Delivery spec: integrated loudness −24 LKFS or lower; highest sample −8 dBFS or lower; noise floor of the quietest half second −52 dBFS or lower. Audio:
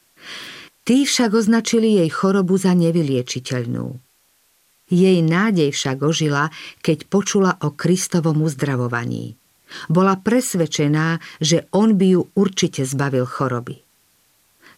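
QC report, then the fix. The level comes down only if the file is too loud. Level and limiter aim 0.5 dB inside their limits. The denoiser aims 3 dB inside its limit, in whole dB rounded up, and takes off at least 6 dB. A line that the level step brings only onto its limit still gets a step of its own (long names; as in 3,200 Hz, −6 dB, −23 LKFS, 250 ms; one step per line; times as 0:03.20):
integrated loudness −18.5 LKFS: out of spec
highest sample −5.0 dBFS: out of spec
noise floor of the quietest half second −60 dBFS: in spec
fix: level −6 dB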